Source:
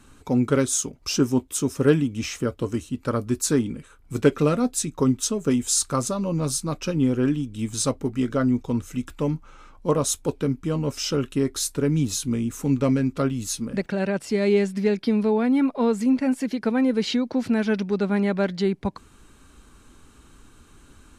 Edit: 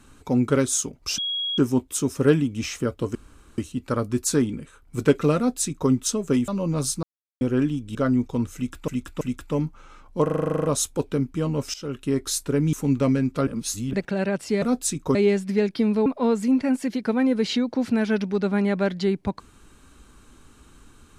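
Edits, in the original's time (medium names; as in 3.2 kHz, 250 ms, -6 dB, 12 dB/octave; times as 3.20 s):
1.18 s: add tone 3.31 kHz -24 dBFS 0.40 s
2.75 s: insert room tone 0.43 s
4.54–5.07 s: copy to 14.43 s
5.65–6.14 s: delete
6.69–7.07 s: mute
7.61–8.30 s: delete
8.90–9.23 s: loop, 3 plays
9.93 s: stutter 0.04 s, 11 plays
11.03–11.46 s: fade in, from -16.5 dB
12.02–12.54 s: delete
13.28–13.74 s: reverse
15.34–15.64 s: delete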